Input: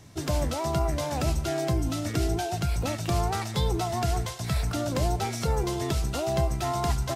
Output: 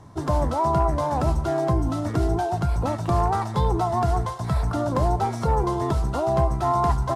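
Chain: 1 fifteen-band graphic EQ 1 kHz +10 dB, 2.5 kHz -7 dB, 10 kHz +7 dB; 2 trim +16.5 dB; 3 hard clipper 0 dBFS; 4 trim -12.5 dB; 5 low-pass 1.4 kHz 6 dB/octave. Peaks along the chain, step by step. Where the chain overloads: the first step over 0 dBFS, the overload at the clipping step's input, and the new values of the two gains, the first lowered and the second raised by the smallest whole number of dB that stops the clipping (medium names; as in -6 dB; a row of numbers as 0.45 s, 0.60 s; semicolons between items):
-12.0 dBFS, +4.5 dBFS, 0.0 dBFS, -12.5 dBFS, -12.5 dBFS; step 2, 4.5 dB; step 2 +11.5 dB, step 4 -7.5 dB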